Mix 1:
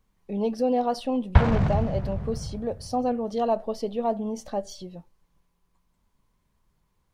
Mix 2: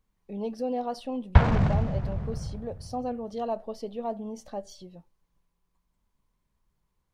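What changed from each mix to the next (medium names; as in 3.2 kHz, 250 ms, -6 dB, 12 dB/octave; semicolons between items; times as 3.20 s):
speech -6.5 dB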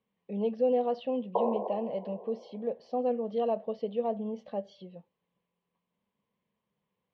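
background: add brick-wall FIR band-pass 320–1100 Hz; master: add cabinet simulation 190–3400 Hz, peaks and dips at 200 Hz +5 dB, 320 Hz -6 dB, 490 Hz +7 dB, 890 Hz -3 dB, 1.4 kHz -8 dB, 3 kHz +4 dB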